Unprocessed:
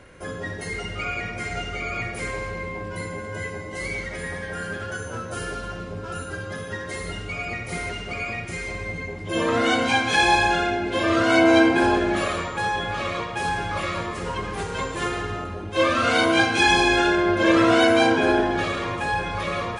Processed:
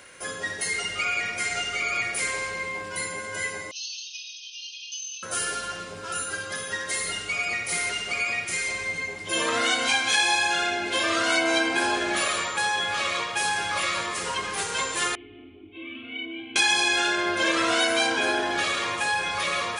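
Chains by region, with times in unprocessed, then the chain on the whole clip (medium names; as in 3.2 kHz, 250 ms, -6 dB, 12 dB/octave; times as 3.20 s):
3.71–5.23 s: brick-wall FIR band-pass 2.4–6.5 kHz + comb 6.4 ms, depth 51%
15.15–16.56 s: comb 2.7 ms, depth 99% + compression 2:1, threshold -22 dBFS + cascade formant filter i
whole clip: tilt EQ +4 dB/octave; compression 2.5:1, threshold -22 dBFS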